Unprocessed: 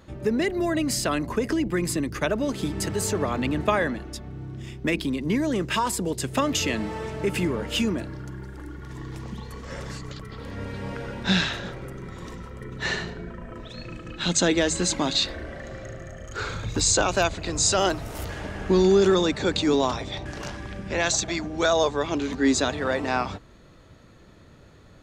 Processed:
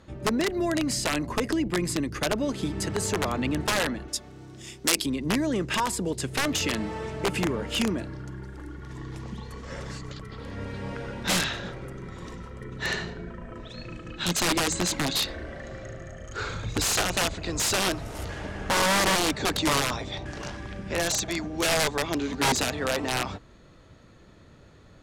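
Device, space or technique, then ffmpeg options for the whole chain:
overflowing digital effects unit: -filter_complex "[0:a]aeval=exprs='(mod(6.31*val(0)+1,2)-1)/6.31':channel_layout=same,lowpass=11000,asettb=1/sr,asplit=3[link_01][link_02][link_03];[link_01]atrim=end=4.084[link_04];[link_02]atrim=start=4.08:end=5.06,asetpts=PTS-STARTPTS,afade=type=in:duration=0.004:curve=qsin,afade=type=out:start_time=0.976:duration=0.004:curve=qsin,bass=frequency=250:gain=-10,treble=frequency=4000:gain=13[link_05];[link_03]atrim=start=5.056[link_06];[link_04][link_05]acrossfade=duration=0.004:curve1=hsin:curve2=qsin[link_07];[link_07][link_06]acrossfade=duration=0.004:curve1=qsin:curve2=hsin,volume=-1.5dB"

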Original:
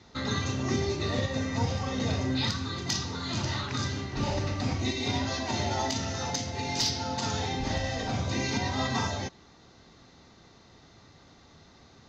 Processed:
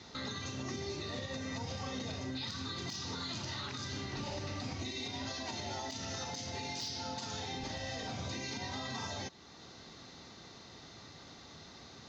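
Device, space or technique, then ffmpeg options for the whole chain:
broadcast voice chain: -af "highpass=frequency=96:poles=1,deesser=0.65,acompressor=threshold=-32dB:ratio=6,equalizer=frequency=4500:width_type=o:width=1.6:gain=4.5,alimiter=level_in=8.5dB:limit=-24dB:level=0:latency=1:release=396,volume=-8.5dB,volume=2dB"

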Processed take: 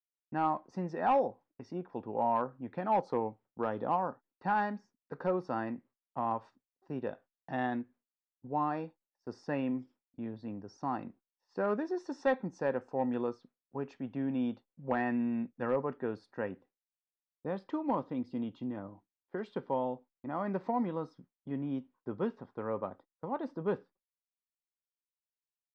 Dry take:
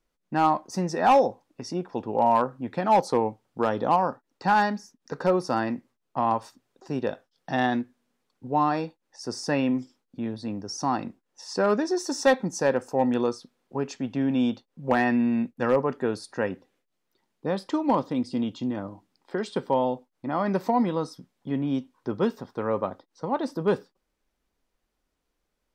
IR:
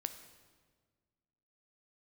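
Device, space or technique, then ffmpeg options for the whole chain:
hearing-loss simulation: -af "lowpass=2300,agate=range=-33dB:threshold=-44dB:ratio=3:detection=peak,volume=-9dB"

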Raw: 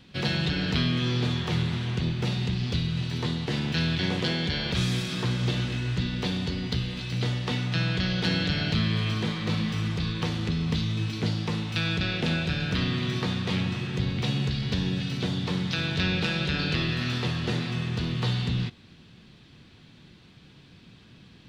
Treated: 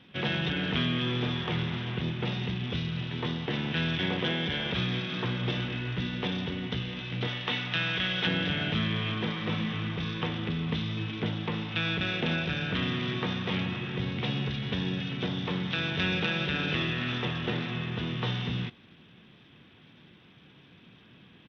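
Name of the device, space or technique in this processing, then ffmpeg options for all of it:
Bluetooth headset: -filter_complex "[0:a]asettb=1/sr,asplit=3[link_01][link_02][link_03];[link_01]atrim=end=7.274[link_04];[link_02]atrim=start=7.27:end=8.27,asetpts=PTS-STARTPTS,afade=type=in:duration=0.004:curve=qsin,afade=type=out:start_time=0.996:duration=0.004:curve=qsin,tiltshelf=frequency=900:gain=-5[link_05];[link_03]atrim=start=8.266[link_06];[link_04][link_05]acrossfade=duration=0.004:curve1=hsin:curve2=qsin[link_07];[link_07][link_06]acrossfade=duration=0.004:curve1=qsin:curve2=hsin,highpass=frequency=200:poles=1,aresample=8000,aresample=44100" -ar 32000 -c:a sbc -b:a 64k

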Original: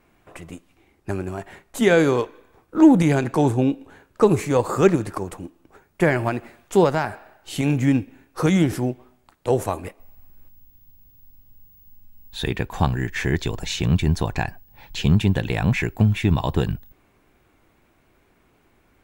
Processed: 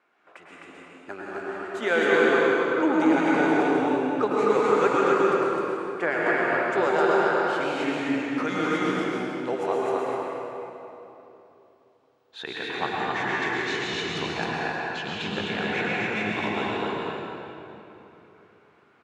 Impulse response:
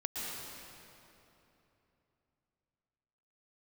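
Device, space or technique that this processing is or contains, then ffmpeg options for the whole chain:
station announcement: -filter_complex "[0:a]highpass=430,lowpass=4500,equalizer=frequency=1400:width_type=o:width=0.44:gain=7.5,aecho=1:1:99.13|259.5:0.282|0.794[link_01];[1:a]atrim=start_sample=2205[link_02];[link_01][link_02]afir=irnorm=-1:irlink=0,volume=-4.5dB"

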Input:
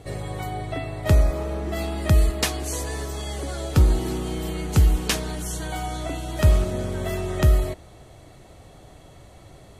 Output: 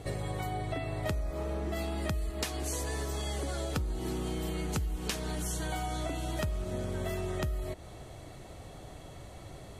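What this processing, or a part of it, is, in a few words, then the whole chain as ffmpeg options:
serial compression, leveller first: -af "acompressor=threshold=-19dB:ratio=2,acompressor=threshold=-31dB:ratio=6"

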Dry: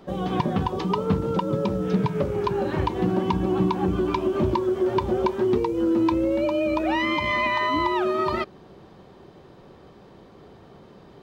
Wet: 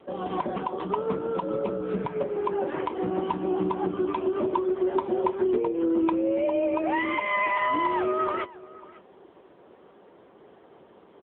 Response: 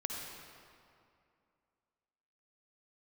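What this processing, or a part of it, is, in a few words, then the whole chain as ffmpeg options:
satellite phone: -af "highpass=310,lowpass=3300,aecho=1:1:549:0.0944" -ar 8000 -c:a libopencore_amrnb -b:a 6700

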